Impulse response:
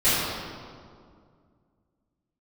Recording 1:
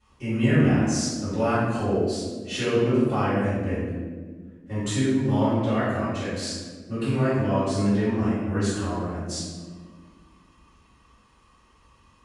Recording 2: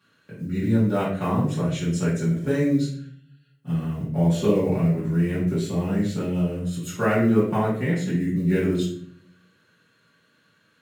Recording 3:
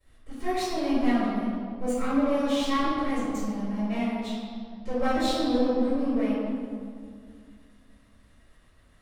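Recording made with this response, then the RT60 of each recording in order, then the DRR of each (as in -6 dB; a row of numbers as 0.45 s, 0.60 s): 3; 1.6 s, 0.55 s, 2.1 s; -16.5 dB, -11.0 dB, -17.5 dB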